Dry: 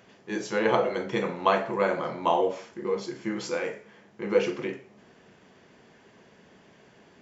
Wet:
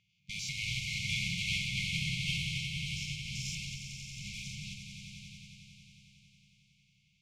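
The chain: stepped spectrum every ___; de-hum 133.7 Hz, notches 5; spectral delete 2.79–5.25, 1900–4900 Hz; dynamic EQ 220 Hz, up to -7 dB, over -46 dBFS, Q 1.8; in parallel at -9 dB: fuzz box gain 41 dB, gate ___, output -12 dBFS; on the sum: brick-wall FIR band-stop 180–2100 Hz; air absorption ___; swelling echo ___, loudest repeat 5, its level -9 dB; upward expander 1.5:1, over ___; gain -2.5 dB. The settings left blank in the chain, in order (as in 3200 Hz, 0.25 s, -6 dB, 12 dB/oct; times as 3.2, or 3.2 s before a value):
0.1 s, -43 dBFS, 67 m, 91 ms, -44 dBFS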